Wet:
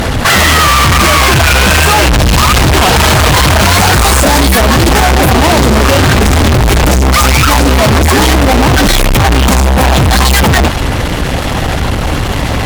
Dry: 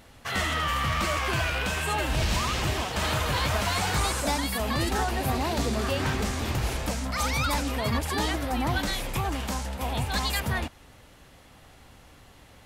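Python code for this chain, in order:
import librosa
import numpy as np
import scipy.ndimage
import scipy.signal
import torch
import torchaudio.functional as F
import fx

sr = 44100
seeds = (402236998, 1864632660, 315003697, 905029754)

y = fx.envelope_sharpen(x, sr, power=1.5)
y = fx.fuzz(y, sr, gain_db=52.0, gate_db=-57.0)
y = F.gain(torch.from_numpy(y), 7.0).numpy()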